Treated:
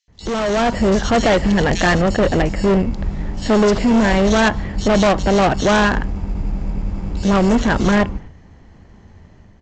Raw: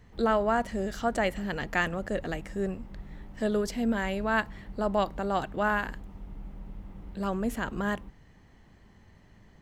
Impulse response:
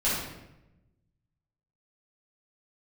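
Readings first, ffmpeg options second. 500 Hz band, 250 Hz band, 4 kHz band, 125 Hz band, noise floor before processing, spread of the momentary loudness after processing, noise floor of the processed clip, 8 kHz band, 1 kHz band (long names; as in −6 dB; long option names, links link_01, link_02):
+13.5 dB, +15.5 dB, +17.0 dB, +18.0 dB, −57 dBFS, 11 LU, −46 dBFS, +17.5 dB, +11.5 dB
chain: -filter_complex "[0:a]asplit=2[link_01][link_02];[link_02]acrusher=samples=18:mix=1:aa=0.000001,volume=-5.5dB[link_03];[link_01][link_03]amix=inputs=2:normalize=0,agate=range=-8dB:threshold=-48dB:ratio=16:detection=peak,equalizer=frequency=79:width_type=o:width=0.32:gain=6.5,acrossover=split=3300[link_04][link_05];[link_04]adelay=80[link_06];[link_06][link_05]amix=inputs=2:normalize=0,aresample=16000,asoftclip=type=hard:threshold=-27dB,aresample=44100,dynaudnorm=framelen=390:gausssize=3:maxgain=9dB,volume=7dB"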